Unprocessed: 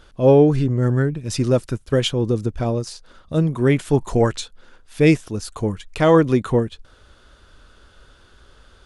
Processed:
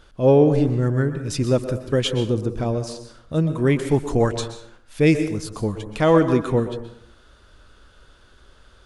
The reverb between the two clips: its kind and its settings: plate-style reverb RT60 0.69 s, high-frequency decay 0.6×, pre-delay 110 ms, DRR 9 dB; trim -2 dB

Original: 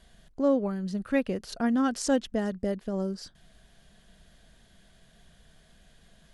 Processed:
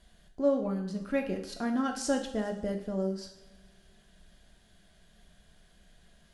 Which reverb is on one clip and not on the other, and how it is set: two-slope reverb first 0.59 s, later 2.1 s, from -18 dB, DRR 2.5 dB; trim -4.5 dB

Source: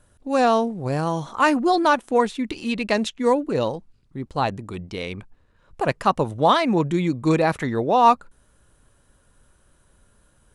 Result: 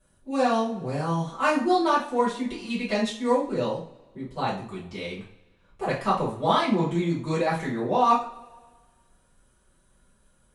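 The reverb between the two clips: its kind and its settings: two-slope reverb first 0.39 s, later 1.5 s, from -21 dB, DRR -10 dB; trim -14.5 dB

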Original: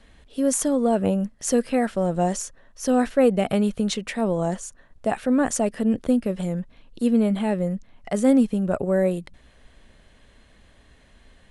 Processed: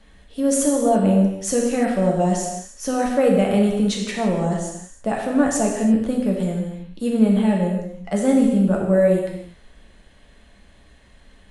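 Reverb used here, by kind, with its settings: gated-style reverb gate 360 ms falling, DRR -1 dB; trim -1 dB

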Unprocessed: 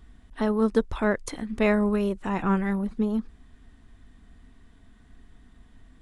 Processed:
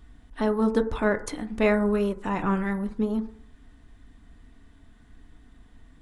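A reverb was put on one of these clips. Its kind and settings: FDN reverb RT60 0.59 s, low-frequency decay 0.85×, high-frequency decay 0.25×, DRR 8 dB

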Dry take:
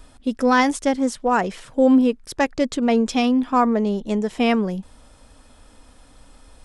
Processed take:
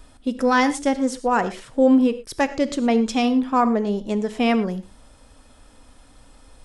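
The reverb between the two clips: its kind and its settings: gated-style reverb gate 140 ms flat, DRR 12 dB; trim -1 dB

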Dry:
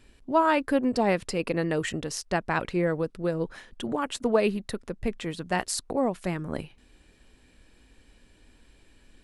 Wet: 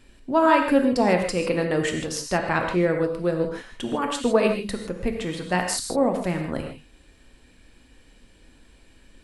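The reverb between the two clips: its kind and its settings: gated-style reverb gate 180 ms flat, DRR 3 dB; trim +2.5 dB

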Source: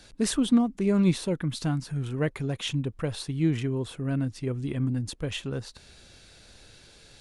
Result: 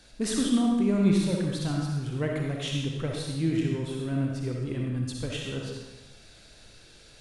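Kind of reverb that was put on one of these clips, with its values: algorithmic reverb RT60 1.1 s, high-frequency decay 0.95×, pre-delay 20 ms, DRR -1 dB; trim -3.5 dB

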